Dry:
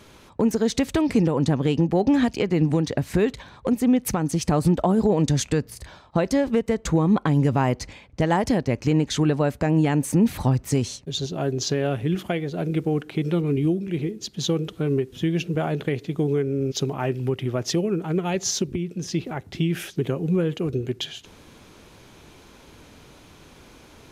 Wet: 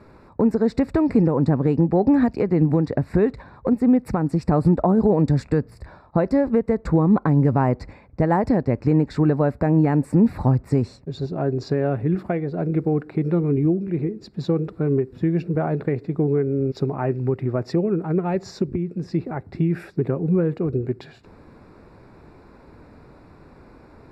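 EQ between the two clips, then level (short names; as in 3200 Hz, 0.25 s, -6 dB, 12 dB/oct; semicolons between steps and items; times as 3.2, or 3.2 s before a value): running mean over 14 samples; +2.5 dB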